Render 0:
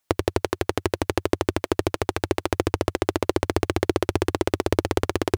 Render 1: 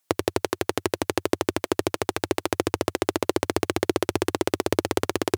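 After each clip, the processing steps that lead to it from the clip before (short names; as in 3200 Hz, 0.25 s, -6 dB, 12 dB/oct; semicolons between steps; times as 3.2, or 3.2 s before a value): HPF 120 Hz 12 dB/oct; bell 16000 Hz +5.5 dB 1.8 oct; gain -1 dB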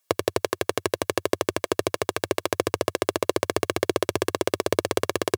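HPF 110 Hz; comb 1.8 ms, depth 45%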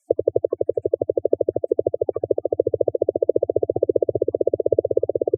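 graphic EQ 125/500/2000/8000 Hz +8/+10/+5/+12 dB; spectral gate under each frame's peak -10 dB strong; gain -2 dB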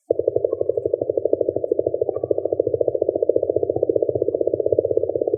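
shoebox room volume 1000 m³, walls mixed, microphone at 0.48 m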